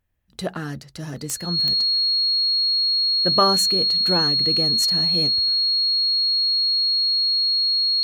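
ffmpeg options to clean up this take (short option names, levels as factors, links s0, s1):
-af "adeclick=t=4,bandreject=f=4300:w=30"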